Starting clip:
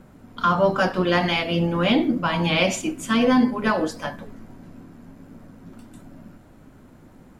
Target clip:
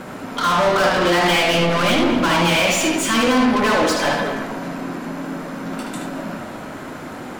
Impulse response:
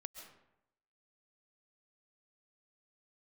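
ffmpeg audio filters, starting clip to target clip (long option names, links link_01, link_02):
-filter_complex "[0:a]alimiter=limit=-14.5dB:level=0:latency=1:release=162,asplit=2[link_01][link_02];[link_02]highpass=frequency=720:poles=1,volume=28dB,asoftclip=type=tanh:threshold=-14.5dB[link_03];[link_01][link_03]amix=inputs=2:normalize=0,lowpass=frequency=6600:poles=1,volume=-6dB,asplit=2[link_04][link_05];[1:a]atrim=start_sample=2205,highshelf=frequency=7800:gain=-11,adelay=75[link_06];[link_05][link_06]afir=irnorm=-1:irlink=0,volume=3.5dB[link_07];[link_04][link_07]amix=inputs=2:normalize=0,volume=1dB"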